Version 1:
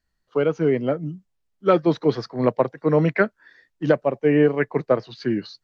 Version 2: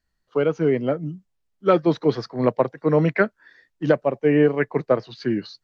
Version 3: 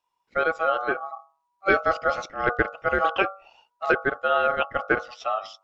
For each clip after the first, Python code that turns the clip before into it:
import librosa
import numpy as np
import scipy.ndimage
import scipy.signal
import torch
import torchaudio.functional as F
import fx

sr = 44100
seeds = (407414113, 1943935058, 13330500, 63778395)

y1 = x
y2 = fx.hum_notches(y1, sr, base_hz=50, count=10)
y2 = y2 * np.sin(2.0 * np.pi * 970.0 * np.arange(len(y2)) / sr)